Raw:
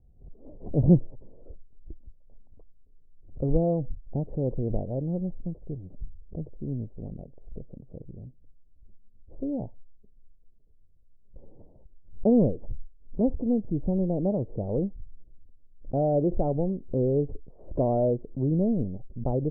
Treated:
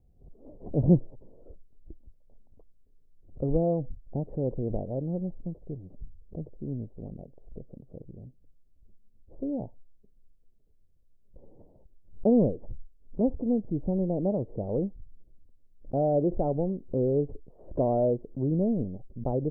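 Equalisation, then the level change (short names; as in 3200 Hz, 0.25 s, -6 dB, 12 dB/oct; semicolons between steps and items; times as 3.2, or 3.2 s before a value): low shelf 140 Hz -5.5 dB; 0.0 dB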